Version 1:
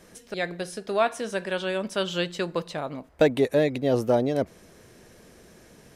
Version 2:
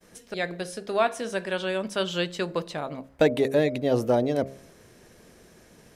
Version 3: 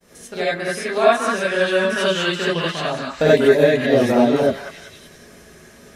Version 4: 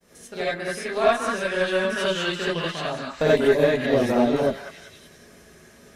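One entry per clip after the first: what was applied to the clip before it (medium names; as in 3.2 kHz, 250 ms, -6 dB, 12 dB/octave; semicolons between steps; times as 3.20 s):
de-hum 67.57 Hz, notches 10; expander -50 dBFS
on a send: repeats whose band climbs or falls 192 ms, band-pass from 1.4 kHz, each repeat 0.7 oct, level -0.5 dB; on the sum: gated-style reverb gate 110 ms rising, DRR -7 dB
Chebyshev shaper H 6 -26 dB, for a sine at -1 dBFS; trim -5 dB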